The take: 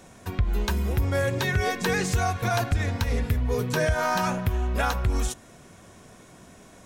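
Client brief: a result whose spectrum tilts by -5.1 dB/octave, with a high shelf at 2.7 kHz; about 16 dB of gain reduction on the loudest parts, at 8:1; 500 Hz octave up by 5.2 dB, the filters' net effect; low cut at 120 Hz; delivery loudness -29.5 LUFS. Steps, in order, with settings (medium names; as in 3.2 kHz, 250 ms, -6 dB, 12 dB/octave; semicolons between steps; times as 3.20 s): high-pass 120 Hz; peaking EQ 500 Hz +6.5 dB; treble shelf 2.7 kHz -5 dB; compression 8:1, threshold -35 dBFS; trim +10 dB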